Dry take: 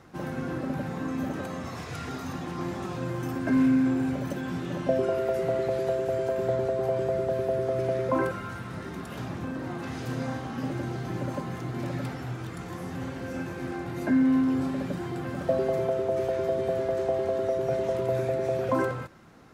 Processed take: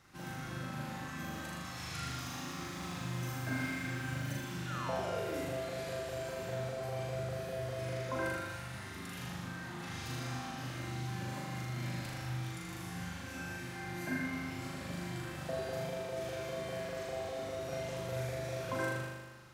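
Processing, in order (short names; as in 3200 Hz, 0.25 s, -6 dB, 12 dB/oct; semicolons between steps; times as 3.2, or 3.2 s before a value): passive tone stack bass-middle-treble 5-5-5; 4.67–5.42 painted sound fall 250–1500 Hz -49 dBFS; flutter echo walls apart 6.8 m, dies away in 1.3 s; 1.93–4.39 lo-fi delay 0.112 s, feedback 80%, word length 10-bit, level -10.5 dB; gain +3.5 dB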